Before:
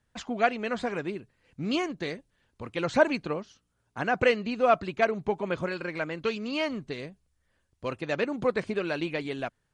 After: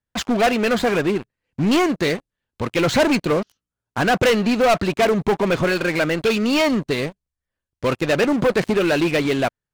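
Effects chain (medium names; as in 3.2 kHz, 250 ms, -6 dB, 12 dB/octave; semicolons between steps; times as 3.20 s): waveshaping leveller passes 5; trim -3 dB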